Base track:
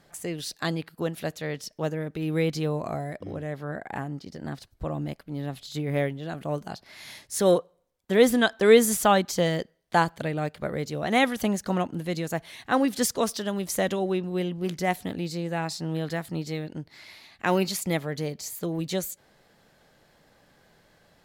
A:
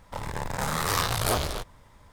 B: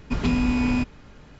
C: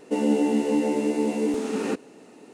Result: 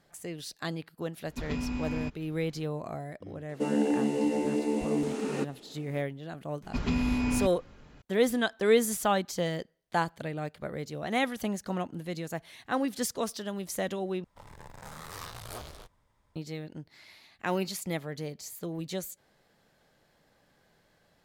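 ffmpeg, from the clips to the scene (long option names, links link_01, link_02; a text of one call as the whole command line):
ffmpeg -i bed.wav -i cue0.wav -i cue1.wav -i cue2.wav -filter_complex "[2:a]asplit=2[link_01][link_02];[0:a]volume=-6.5dB,asplit=2[link_03][link_04];[link_03]atrim=end=14.244[link_05];[1:a]atrim=end=2.12,asetpts=PTS-STARTPTS,volume=-16.5dB[link_06];[link_04]atrim=start=16.356[link_07];[link_01]atrim=end=1.39,asetpts=PTS-STARTPTS,volume=-11.5dB,afade=type=in:duration=0.004:curve=hsin,afade=type=out:start_time=1.386:duration=0.004:curve=hsin,adelay=1260[link_08];[3:a]atrim=end=2.53,asetpts=PTS-STARTPTS,volume=-5dB,afade=type=in:duration=0.004:curve=hsin,afade=type=out:start_time=2.526:duration=0.004:curve=hsin,adelay=153909S[link_09];[link_02]atrim=end=1.39,asetpts=PTS-STARTPTS,volume=-6dB,afade=type=in:duration=0.004:curve=hsin,afade=type=out:start_time=1.386:duration=0.004:curve=hsin,adelay=6630[link_10];[link_05][link_06]acrossfade=duration=0.004:curve1=hsin:curve2=hsin[link_11];[link_11][link_07]acrossfade=duration=0.004:curve1=hsin:curve2=hsin[link_12];[link_12][link_08][link_09][link_10]amix=inputs=4:normalize=0" out.wav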